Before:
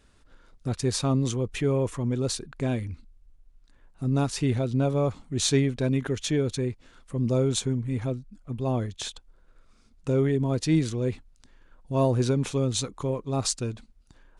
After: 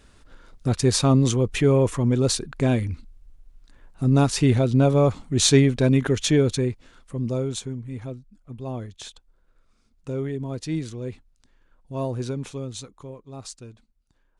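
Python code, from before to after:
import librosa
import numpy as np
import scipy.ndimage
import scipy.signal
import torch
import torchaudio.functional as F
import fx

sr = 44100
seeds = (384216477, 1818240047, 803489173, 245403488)

y = fx.gain(x, sr, db=fx.line((6.42, 6.5), (7.69, -5.0), (12.38, -5.0), (13.18, -11.5)))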